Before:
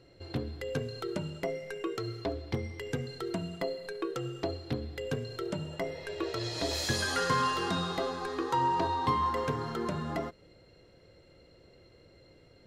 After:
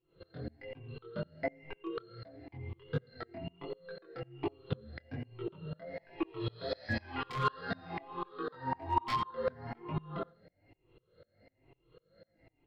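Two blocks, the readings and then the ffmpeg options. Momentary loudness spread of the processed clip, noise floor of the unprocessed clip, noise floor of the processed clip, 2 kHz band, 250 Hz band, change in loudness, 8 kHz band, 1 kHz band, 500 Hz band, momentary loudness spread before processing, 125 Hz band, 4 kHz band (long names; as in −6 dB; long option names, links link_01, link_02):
13 LU, −59 dBFS, −77 dBFS, −6.0 dB, −6.0 dB, −6.0 dB, below −20 dB, −6.0 dB, −6.5 dB, 9 LU, −4.5 dB, −11.0 dB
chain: -filter_complex "[0:a]afftfilt=real='re*pow(10,14/40*sin(2*PI*(0.67*log(max(b,1)*sr/1024/100)/log(2)-(1.1)*(pts-256)/sr)))':imag='im*pow(10,14/40*sin(2*PI*(0.67*log(max(b,1)*sr/1024/100)/log(2)-(1.1)*(pts-256)/sr)))':win_size=1024:overlap=0.75,lowpass=2900,bandreject=frequency=60:width_type=h:width=6,bandreject=frequency=120:width_type=h:width=6,bandreject=frequency=180:width_type=h:width=6,bandreject=frequency=240:width_type=h:width=6,bandreject=frequency=300:width_type=h:width=6,bandreject=frequency=360:width_type=h:width=6,bandreject=frequency=420:width_type=h:width=6,bandreject=frequency=480:width_type=h:width=6,bandreject=frequency=540:width_type=h:width=6,adynamicequalizer=threshold=0.00562:dfrequency=110:dqfactor=1.5:tfrequency=110:tqfactor=1.5:attack=5:release=100:ratio=0.375:range=2:mode=boostabove:tftype=bell,aresample=11025,aeval=exprs='(mod(5.31*val(0)+1,2)-1)/5.31':channel_layout=same,aresample=44100,flanger=delay=18.5:depth=5.8:speed=1.3,aeval=exprs='clip(val(0),-1,0.075)':channel_layout=same,flanger=delay=5.9:depth=2.6:regen=-24:speed=0.49:shape=sinusoidal,asplit=2[link_01][link_02];[link_02]adelay=87.46,volume=-21dB,highshelf=frequency=4000:gain=-1.97[link_03];[link_01][link_03]amix=inputs=2:normalize=0,aeval=exprs='val(0)*pow(10,-29*if(lt(mod(-4*n/s,1),2*abs(-4)/1000),1-mod(-4*n/s,1)/(2*abs(-4)/1000),(mod(-4*n/s,1)-2*abs(-4)/1000)/(1-2*abs(-4)/1000))/20)':channel_layout=same,volume=6.5dB"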